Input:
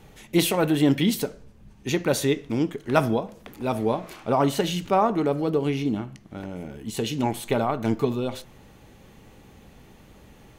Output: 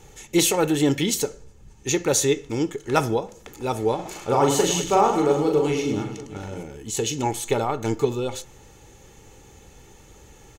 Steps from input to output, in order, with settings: bell 6800 Hz +13 dB 0.59 oct; comb 2.3 ms, depth 49%; 3.95–6.63 reverse bouncing-ball echo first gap 40 ms, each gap 1.6×, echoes 5

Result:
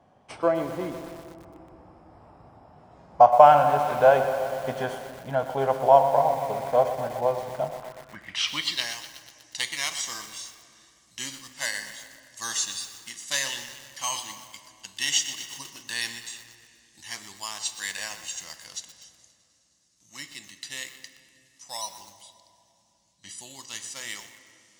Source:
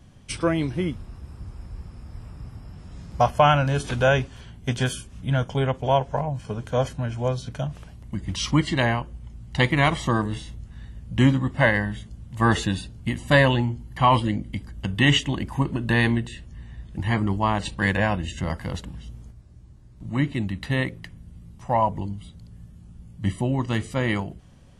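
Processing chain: in parallel at -11 dB: decimation with a swept rate 9×, swing 60% 0.48 Hz; 22.32–23.29 on the sum: air absorption 67 m; thin delay 0.105 s, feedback 80%, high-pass 1700 Hz, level -23.5 dB; on a send at -9.5 dB: reverb RT60 2.7 s, pre-delay 3 ms; on the sum: band-pass sweep 740 Hz -> 6000 Hz, 7.72–8.94; high shelf 4500 Hz +9.5 dB; lo-fi delay 0.122 s, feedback 80%, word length 7-bit, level -12 dB; gain +5 dB

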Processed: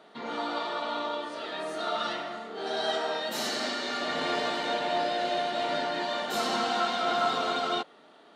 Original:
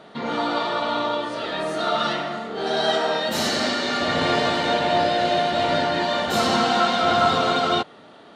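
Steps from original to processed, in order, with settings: HPF 250 Hz 12 dB/oct; high shelf 12000 Hz +5 dB; notch 540 Hz, Q 17; gain -8 dB

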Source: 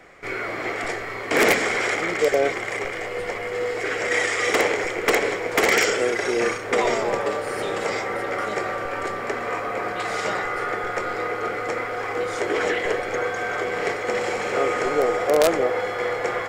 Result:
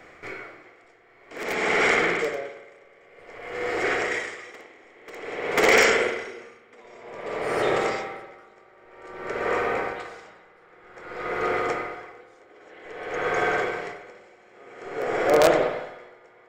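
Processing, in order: bell 11000 Hz -8.5 dB 0.49 oct; spring tank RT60 3.4 s, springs 52 ms, chirp 55 ms, DRR 0 dB; dB-linear tremolo 0.52 Hz, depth 31 dB

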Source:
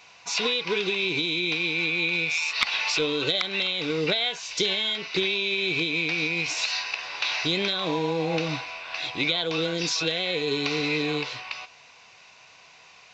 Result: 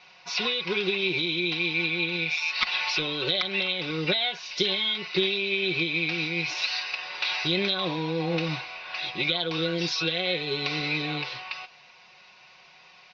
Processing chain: steep low-pass 5500 Hz 48 dB/oct; comb 5.5 ms, depth 67%; gain -2.5 dB

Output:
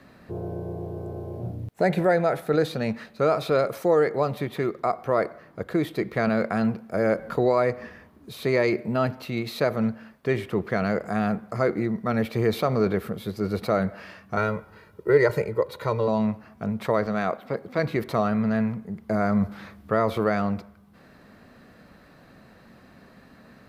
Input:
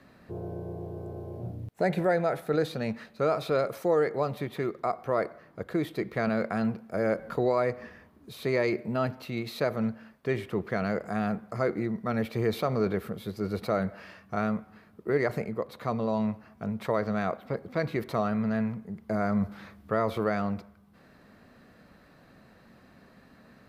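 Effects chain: 14.37–16.08 comb 2.1 ms, depth 77%; 17.06–17.79 HPF 180 Hz 6 dB/oct; gain +4.5 dB

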